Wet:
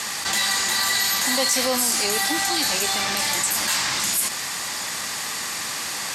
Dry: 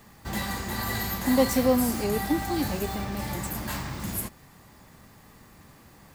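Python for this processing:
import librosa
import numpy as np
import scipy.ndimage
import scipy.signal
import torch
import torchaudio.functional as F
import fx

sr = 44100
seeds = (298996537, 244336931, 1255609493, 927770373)

y = fx.weighting(x, sr, curve='ITU-R 468')
y = fx.env_flatten(y, sr, amount_pct=70)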